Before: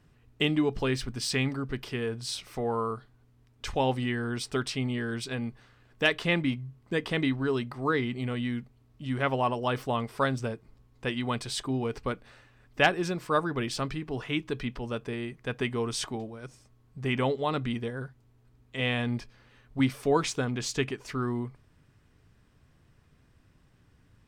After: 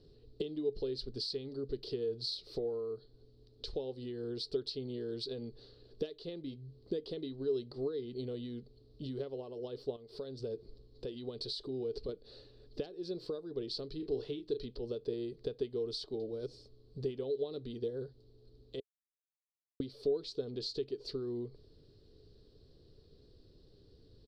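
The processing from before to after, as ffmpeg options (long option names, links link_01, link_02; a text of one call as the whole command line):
ffmpeg -i in.wav -filter_complex "[0:a]asettb=1/sr,asplit=3[link_01][link_02][link_03];[link_01]atrim=end=9.964[link_04];[link_02]atrim=start=9.96:end=12.09,asetpts=PTS-STARTPTS,afade=type=in:duration=0.004:curve=qsin,afade=type=out:start_time=2.126:duration=0.004:curve=qsin,acompressor=threshold=-43dB:ratio=2.5:attack=3.2:release=140:knee=1:detection=peak[link_05];[link_03]atrim=start=12.086[link_06];[link_04][link_05]acrossfade=duration=0.004:curve1=hsin:curve2=qsin[link_07];[link_07][link_06]acrossfade=duration=0.004:curve1=qsin:curve2=hsin,asettb=1/sr,asplit=3[link_08][link_09][link_10];[link_08]atrim=end=13.964[link_11];[link_09]atrim=start=13.96:end=14.66,asetpts=PTS-STARTPTS,afade=type=in:duration=0.004:curve=qsin,afade=type=out:start_time=0.696:duration=0.004:curve=qsin,asplit=2[link_12][link_13];[link_13]adelay=35,volume=-8dB[link_14];[link_12][link_14]amix=inputs=2:normalize=0,atrim=end_sample=30870[link_15];[link_10]atrim=start=14.656[link_16];[link_11][link_15]acrossfade=duration=0.004:curve1=hsin:curve2=qsin[link_17];[link_17][link_16]acrossfade=duration=0.004:curve1=qsin:curve2=hsin,asplit=3[link_18][link_19][link_20];[link_18]atrim=end=18.8,asetpts=PTS-STARTPTS,afade=type=out:start_time=18.796:duration=0.004:curve=hsin[link_21];[link_19]atrim=start=18.8:end=19.8,asetpts=PTS-STARTPTS,volume=0[link_22];[link_20]atrim=start=19.8,asetpts=PTS-STARTPTS,afade=type=in:duration=0.004:curve=hsin[link_23];[link_21][link_22][link_23]concat=n=3:v=0:a=1,equalizer=frequency=160:width=0.39:gain=-8.5,acompressor=threshold=-44dB:ratio=12,firequalizer=gain_entry='entry(240,0);entry(420,12);entry(630,-5);entry(910,-17);entry(2200,-23);entry(4300,9);entry(6300,-17);entry(12000,-21)':delay=0.05:min_phase=1,volume=5.5dB" out.wav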